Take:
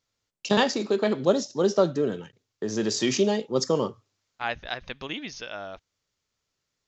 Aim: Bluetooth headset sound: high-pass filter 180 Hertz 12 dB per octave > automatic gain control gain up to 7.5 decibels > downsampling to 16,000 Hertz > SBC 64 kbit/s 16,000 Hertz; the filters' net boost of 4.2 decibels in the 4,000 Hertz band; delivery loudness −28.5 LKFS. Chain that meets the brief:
high-pass filter 180 Hz 12 dB per octave
parametric band 4,000 Hz +5.5 dB
automatic gain control gain up to 7.5 dB
downsampling to 16,000 Hz
level −2.5 dB
SBC 64 kbit/s 16,000 Hz

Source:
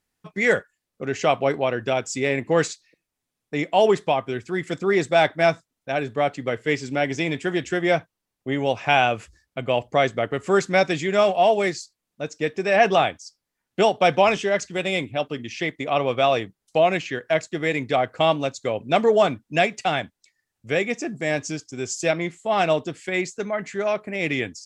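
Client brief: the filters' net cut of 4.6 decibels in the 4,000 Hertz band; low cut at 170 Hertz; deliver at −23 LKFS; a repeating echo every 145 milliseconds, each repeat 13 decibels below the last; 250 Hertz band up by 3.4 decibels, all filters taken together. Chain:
high-pass filter 170 Hz
parametric band 250 Hz +6 dB
parametric band 4,000 Hz −6.5 dB
repeating echo 145 ms, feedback 22%, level −13 dB
level −1 dB

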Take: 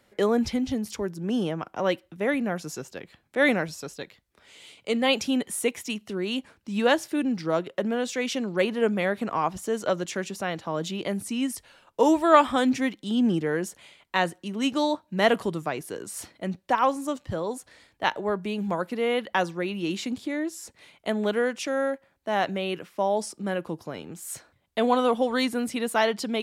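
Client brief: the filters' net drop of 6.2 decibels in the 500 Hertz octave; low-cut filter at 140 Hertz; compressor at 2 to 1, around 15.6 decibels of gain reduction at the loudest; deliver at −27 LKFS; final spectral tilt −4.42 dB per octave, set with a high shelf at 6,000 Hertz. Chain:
high-pass filter 140 Hz
parametric band 500 Hz −7.5 dB
high-shelf EQ 6,000 Hz −9 dB
downward compressor 2 to 1, threshold −43 dBFS
level +13 dB

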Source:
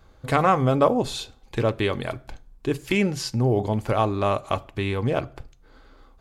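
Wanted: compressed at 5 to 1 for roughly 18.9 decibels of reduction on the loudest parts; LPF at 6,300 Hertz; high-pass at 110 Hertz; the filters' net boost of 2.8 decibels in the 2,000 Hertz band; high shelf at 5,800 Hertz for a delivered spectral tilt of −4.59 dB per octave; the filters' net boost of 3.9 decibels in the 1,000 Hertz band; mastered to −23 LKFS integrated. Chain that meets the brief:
high-pass filter 110 Hz
low-pass filter 6,300 Hz
parametric band 1,000 Hz +4.5 dB
parametric band 2,000 Hz +3.5 dB
high-shelf EQ 5,800 Hz −8 dB
downward compressor 5 to 1, threshold −33 dBFS
level +14 dB

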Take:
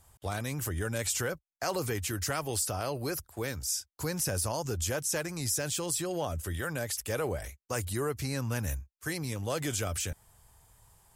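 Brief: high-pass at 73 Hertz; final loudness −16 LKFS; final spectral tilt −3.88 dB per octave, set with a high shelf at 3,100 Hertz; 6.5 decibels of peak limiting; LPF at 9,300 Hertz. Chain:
high-pass filter 73 Hz
low-pass filter 9,300 Hz
high-shelf EQ 3,100 Hz +7 dB
level +16.5 dB
brickwall limiter −4 dBFS

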